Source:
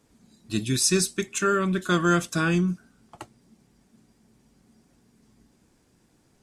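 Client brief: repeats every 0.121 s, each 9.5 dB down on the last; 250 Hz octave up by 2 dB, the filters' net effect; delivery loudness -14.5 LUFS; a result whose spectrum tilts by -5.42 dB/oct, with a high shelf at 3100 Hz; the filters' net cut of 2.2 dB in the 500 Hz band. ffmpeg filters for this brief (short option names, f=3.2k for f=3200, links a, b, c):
-af "equalizer=f=250:t=o:g=6,equalizer=f=500:t=o:g=-7.5,highshelf=f=3.1k:g=-6.5,aecho=1:1:121|242|363|484:0.335|0.111|0.0365|0.012,volume=9.5dB"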